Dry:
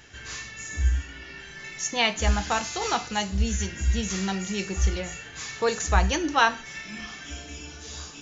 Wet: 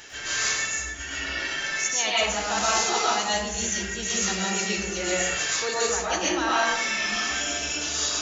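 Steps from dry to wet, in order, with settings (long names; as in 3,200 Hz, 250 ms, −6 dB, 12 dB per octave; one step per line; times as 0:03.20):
reversed playback
downward compressor 5 to 1, threshold −34 dBFS, peak gain reduction 17.5 dB
reversed playback
bass and treble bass −13 dB, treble +5 dB
convolution reverb RT60 0.85 s, pre-delay 80 ms, DRR −6.5 dB
level +6 dB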